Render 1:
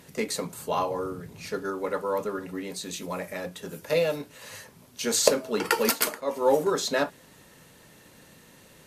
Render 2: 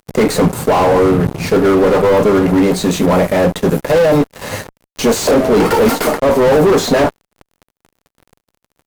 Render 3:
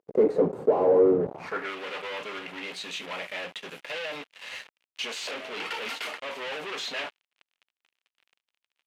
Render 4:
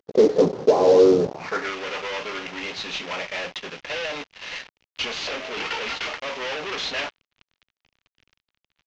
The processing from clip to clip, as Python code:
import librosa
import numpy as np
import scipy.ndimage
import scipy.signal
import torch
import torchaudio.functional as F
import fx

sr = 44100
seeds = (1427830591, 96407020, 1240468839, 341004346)

y1 = fx.small_body(x, sr, hz=(750.0, 2100.0), ring_ms=60, db=7)
y1 = fx.fuzz(y1, sr, gain_db=40.0, gate_db=-44.0)
y1 = fx.tilt_shelf(y1, sr, db=7.0, hz=1400.0)
y2 = fx.filter_sweep_bandpass(y1, sr, from_hz=440.0, to_hz=2800.0, start_s=1.21, end_s=1.72, q=2.4)
y2 = y2 * 10.0 ** (-5.5 / 20.0)
y3 = fx.cvsd(y2, sr, bps=32000)
y3 = y3 * 10.0 ** (5.5 / 20.0)